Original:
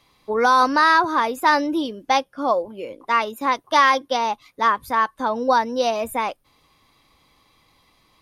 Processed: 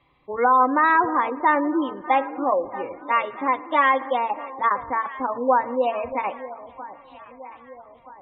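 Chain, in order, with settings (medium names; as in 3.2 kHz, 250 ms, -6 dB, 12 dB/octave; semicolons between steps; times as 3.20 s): low-pass 2.8 kHz 24 dB/octave; peaking EQ 1.5 kHz -4.5 dB 0.41 oct; comb of notches 220 Hz; echo whose repeats swap between lows and highs 638 ms, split 900 Hz, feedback 65%, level -14 dB; spring tank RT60 1.7 s, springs 55 ms, chirp 80 ms, DRR 16 dB; spectral gate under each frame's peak -30 dB strong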